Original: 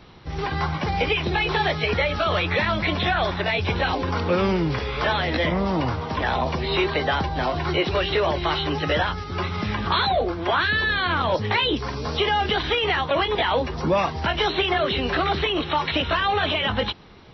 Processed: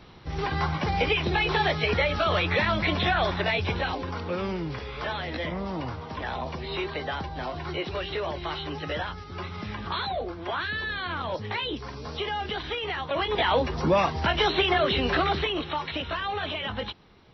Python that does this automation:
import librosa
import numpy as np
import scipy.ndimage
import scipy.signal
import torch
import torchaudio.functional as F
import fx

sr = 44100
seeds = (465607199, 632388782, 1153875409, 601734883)

y = fx.gain(x, sr, db=fx.line((3.48, -2.0), (4.2, -9.0), (12.97, -9.0), (13.49, -1.0), (15.15, -1.0), (15.88, -8.5)))